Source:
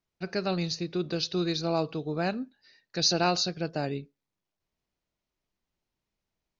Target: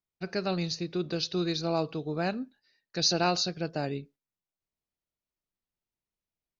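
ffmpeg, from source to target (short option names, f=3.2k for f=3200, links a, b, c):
-af "agate=range=-9dB:threshold=-53dB:ratio=16:detection=peak,volume=-1dB"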